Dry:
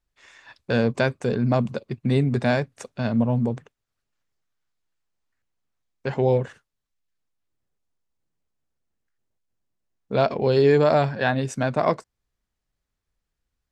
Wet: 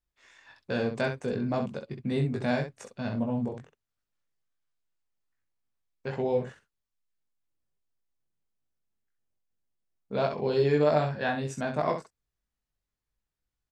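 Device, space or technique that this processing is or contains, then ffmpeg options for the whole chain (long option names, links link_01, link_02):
slapback doubling: -filter_complex "[0:a]asplit=3[link_01][link_02][link_03];[link_02]adelay=20,volume=-4dB[link_04];[link_03]adelay=65,volume=-7.5dB[link_05];[link_01][link_04][link_05]amix=inputs=3:normalize=0,volume=-8.5dB"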